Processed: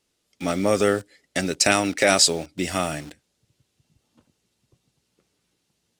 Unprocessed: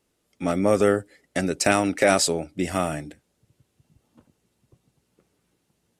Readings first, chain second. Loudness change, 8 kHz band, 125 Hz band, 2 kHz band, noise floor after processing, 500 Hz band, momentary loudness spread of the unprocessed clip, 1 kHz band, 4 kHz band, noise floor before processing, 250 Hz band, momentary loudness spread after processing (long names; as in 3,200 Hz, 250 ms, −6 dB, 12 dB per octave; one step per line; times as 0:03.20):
+1.5 dB, +5.0 dB, −1.5 dB, +2.5 dB, −74 dBFS, −1.0 dB, 10 LU, 0.0 dB, +7.5 dB, −73 dBFS, −1.0 dB, 12 LU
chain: in parallel at −7 dB: bit-depth reduction 6 bits, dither none
on the sum: parametric band 4,600 Hz +9 dB 2.1 octaves
level −4.5 dB